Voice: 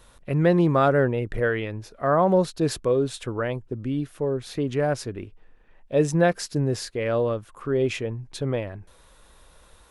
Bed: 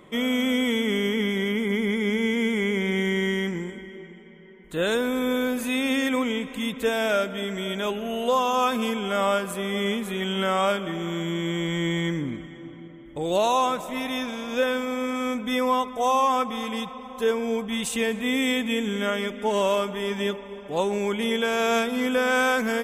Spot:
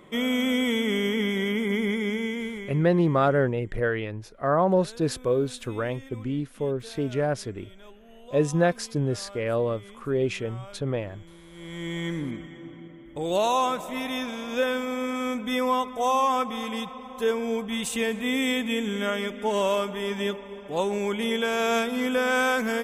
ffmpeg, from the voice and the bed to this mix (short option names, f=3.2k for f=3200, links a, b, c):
-filter_complex "[0:a]adelay=2400,volume=-2dB[a];[1:a]volume=20dB,afade=t=out:st=1.85:d=0.98:silence=0.0841395,afade=t=in:st=11.51:d=0.79:silence=0.0891251[b];[a][b]amix=inputs=2:normalize=0"